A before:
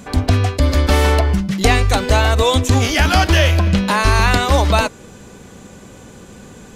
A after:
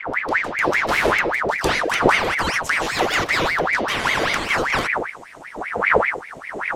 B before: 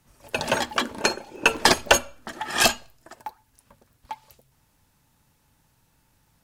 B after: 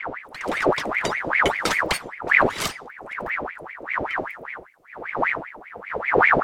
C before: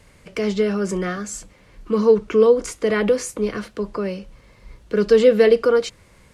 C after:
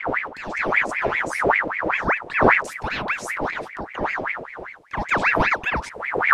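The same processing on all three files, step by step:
fade-in on the opening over 0.77 s; wind noise 180 Hz -17 dBFS; ring modulator with a swept carrier 1.3 kHz, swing 70%, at 5.1 Hz; trim -5 dB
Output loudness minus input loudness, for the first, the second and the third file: -4.5 LU, -0.5 LU, -3.0 LU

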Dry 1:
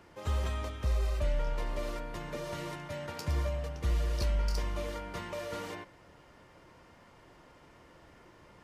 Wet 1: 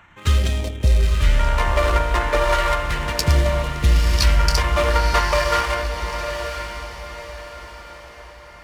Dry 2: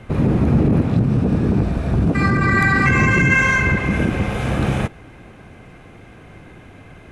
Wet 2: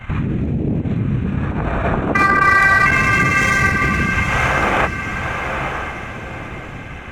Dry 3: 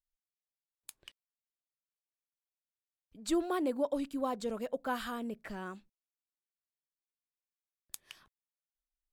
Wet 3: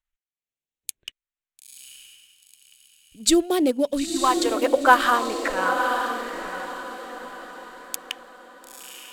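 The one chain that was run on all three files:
local Wiener filter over 9 samples; compression, threshold -20 dBFS; phase shifter stages 2, 0.35 Hz, lowest notch 110–1200 Hz; transient shaper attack +1 dB, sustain -8 dB; peak limiter -21.5 dBFS; gate -52 dBFS, range -6 dB; bass shelf 450 Hz -8.5 dB; echo that smears into a reverb 946 ms, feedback 41%, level -5.5 dB; dynamic bell 1.2 kHz, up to +4 dB, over -49 dBFS, Q 1.1; peak normalisation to -2 dBFS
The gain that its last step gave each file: +21.5 dB, +16.5 dB, +19.5 dB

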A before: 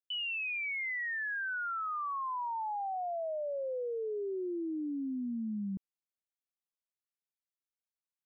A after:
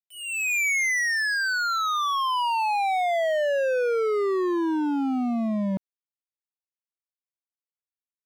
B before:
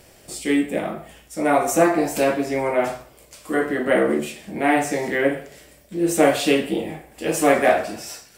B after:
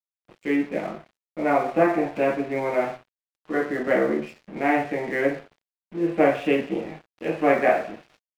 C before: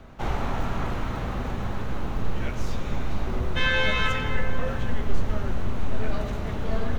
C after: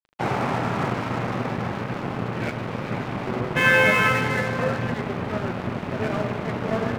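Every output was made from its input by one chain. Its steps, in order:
elliptic band-pass 120–2500 Hz, stop band 40 dB; crossover distortion -41 dBFS; normalise loudness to -24 LUFS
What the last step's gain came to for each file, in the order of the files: +18.0 dB, -2.0 dB, +9.5 dB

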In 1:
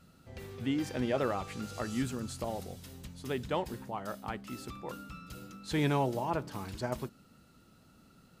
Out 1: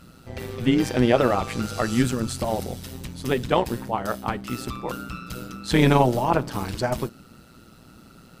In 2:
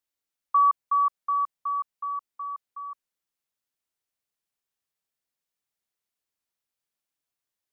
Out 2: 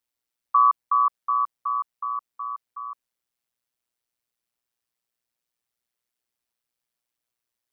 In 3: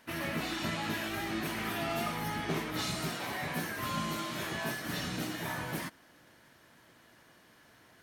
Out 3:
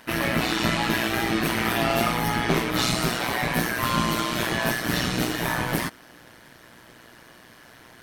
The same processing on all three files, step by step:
band-stop 6.8 kHz, Q 21; AM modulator 120 Hz, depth 55%; normalise loudness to -24 LUFS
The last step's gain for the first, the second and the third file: +15.0 dB, +5.5 dB, +14.5 dB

